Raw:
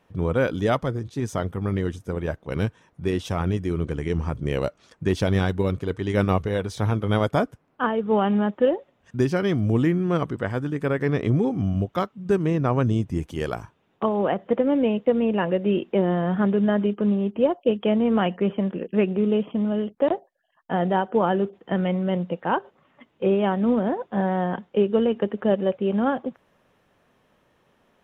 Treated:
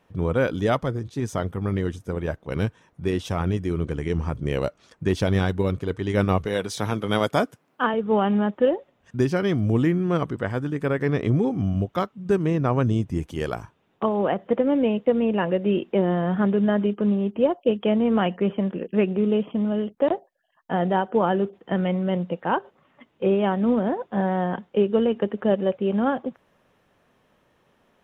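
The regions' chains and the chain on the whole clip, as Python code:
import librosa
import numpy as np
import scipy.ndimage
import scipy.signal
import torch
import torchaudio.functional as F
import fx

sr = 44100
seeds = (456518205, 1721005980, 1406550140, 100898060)

y = fx.chain(x, sr, fx.highpass(hz=150.0, slope=12),
    fx.high_shelf(hz=2400.0, db=7.5), at=(6.45, 7.94))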